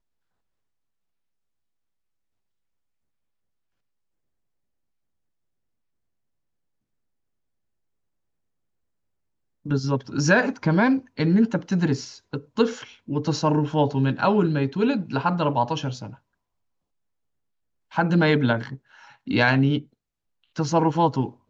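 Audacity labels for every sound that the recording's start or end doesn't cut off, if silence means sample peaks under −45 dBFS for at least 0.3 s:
9.660000	16.160000	sound
17.910000	19.840000	sound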